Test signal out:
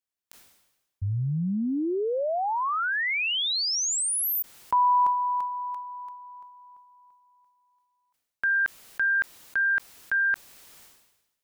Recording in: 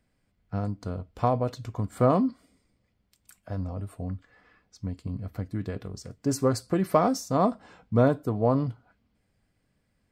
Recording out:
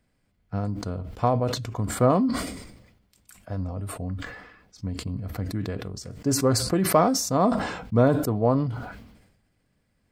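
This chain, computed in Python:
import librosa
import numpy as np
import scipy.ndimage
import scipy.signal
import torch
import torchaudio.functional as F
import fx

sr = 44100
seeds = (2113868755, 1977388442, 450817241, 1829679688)

y = fx.sustainer(x, sr, db_per_s=56.0)
y = y * 10.0 ** (1.5 / 20.0)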